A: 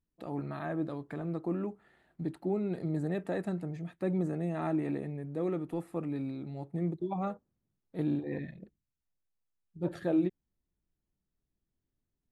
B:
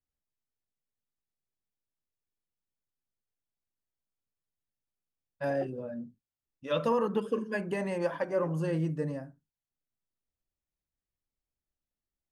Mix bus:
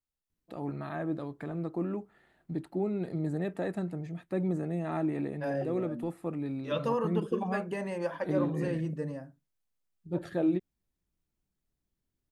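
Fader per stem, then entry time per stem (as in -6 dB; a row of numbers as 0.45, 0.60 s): +0.5, -2.5 dB; 0.30, 0.00 s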